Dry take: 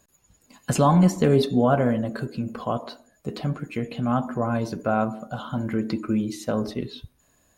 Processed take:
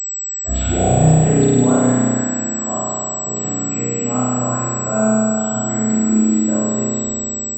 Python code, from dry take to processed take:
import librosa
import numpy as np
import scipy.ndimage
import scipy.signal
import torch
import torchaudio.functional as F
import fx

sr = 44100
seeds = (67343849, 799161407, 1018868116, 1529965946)

y = fx.tape_start_head(x, sr, length_s=1.2)
y = fx.rev_spring(y, sr, rt60_s=2.8, pass_ms=(32,), chirp_ms=25, drr_db=-9.5)
y = fx.pwm(y, sr, carrier_hz=7800.0)
y = F.gain(torch.from_numpy(y), -5.0).numpy()